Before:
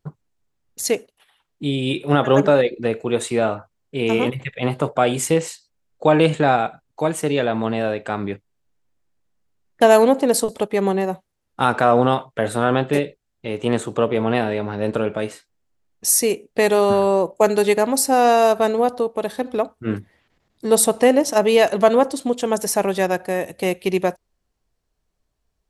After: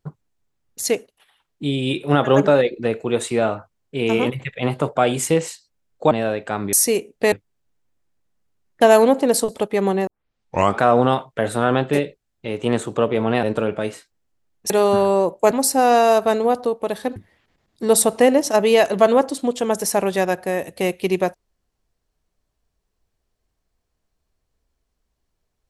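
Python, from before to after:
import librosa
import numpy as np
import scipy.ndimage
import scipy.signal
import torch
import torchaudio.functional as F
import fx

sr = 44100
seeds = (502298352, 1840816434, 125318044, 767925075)

y = fx.edit(x, sr, fx.cut(start_s=6.11, length_s=1.59),
    fx.tape_start(start_s=11.07, length_s=0.74),
    fx.cut(start_s=14.43, length_s=0.38),
    fx.move(start_s=16.08, length_s=0.59, to_s=8.32),
    fx.cut(start_s=17.48, length_s=0.37),
    fx.cut(start_s=19.5, length_s=0.48), tone=tone)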